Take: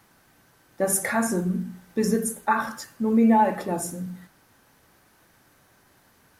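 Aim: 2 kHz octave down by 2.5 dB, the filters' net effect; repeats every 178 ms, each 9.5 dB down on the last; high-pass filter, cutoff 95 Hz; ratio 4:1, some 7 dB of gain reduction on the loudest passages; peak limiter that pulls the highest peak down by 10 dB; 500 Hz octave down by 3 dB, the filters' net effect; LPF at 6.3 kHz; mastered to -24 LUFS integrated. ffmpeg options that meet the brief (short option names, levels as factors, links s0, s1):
-af "highpass=95,lowpass=6300,equalizer=f=500:t=o:g=-3.5,equalizer=f=2000:t=o:g=-3,acompressor=threshold=0.0631:ratio=4,alimiter=level_in=1.06:limit=0.0631:level=0:latency=1,volume=0.944,aecho=1:1:178|356|534|712:0.335|0.111|0.0365|0.012,volume=2.99"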